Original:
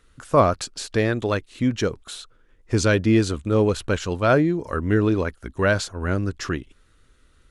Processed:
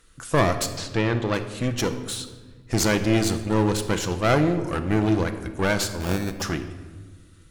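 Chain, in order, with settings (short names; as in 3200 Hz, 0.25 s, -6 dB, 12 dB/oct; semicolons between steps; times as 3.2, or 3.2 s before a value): high shelf 4700 Hz +10 dB; one-sided clip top -29 dBFS; 0.66–1.34 air absorption 110 m; 6–6.42 sample-rate reducer 2000 Hz, jitter 0%; shoebox room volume 1200 m³, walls mixed, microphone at 0.71 m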